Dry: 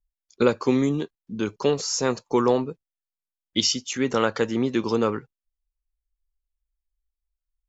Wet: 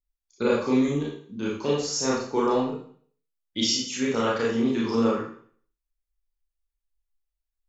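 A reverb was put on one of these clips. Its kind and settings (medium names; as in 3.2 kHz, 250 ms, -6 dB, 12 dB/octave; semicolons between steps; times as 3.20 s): Schroeder reverb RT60 0.52 s, combs from 27 ms, DRR -5.5 dB; trim -8 dB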